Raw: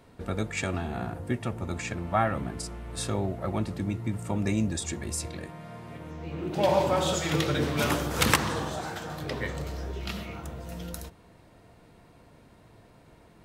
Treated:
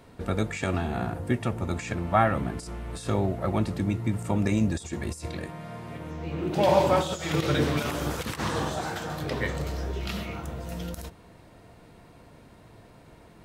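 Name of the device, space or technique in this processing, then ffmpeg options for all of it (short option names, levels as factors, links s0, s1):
de-esser from a sidechain: -filter_complex "[0:a]asplit=2[s0][s1];[s1]highpass=f=5500:w=0.5412,highpass=f=5500:w=1.3066,apad=whole_len=593050[s2];[s0][s2]sidechaincompress=threshold=0.00631:ratio=16:attack=2.4:release=39,volume=1.5"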